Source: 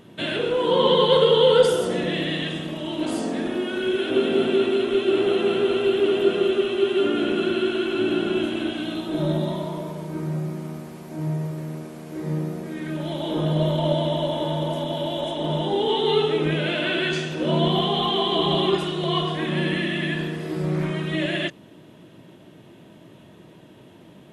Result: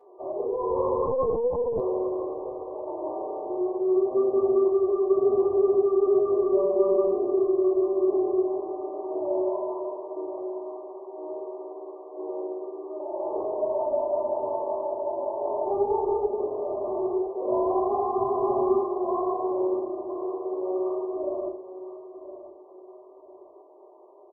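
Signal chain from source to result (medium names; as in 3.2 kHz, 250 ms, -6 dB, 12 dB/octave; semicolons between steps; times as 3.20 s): elliptic high-pass 380 Hz, stop band 40 dB; spectral gate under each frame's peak -25 dB strong; saturation -22 dBFS, distortion -9 dB; 6.51–7.07 s: whistle 580 Hz -27 dBFS; Chebyshev shaper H 2 -17 dB, 4 -28 dB, 6 -41 dB, 8 -44 dB, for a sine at -18 dBFS; brick-wall FIR low-pass 1.2 kHz; feedback delay 1014 ms, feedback 33%, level -13.5 dB; reverberation RT60 0.35 s, pre-delay 4 ms, DRR -8.5 dB; 1.06–1.80 s: LPC vocoder at 8 kHz pitch kept; trim -8 dB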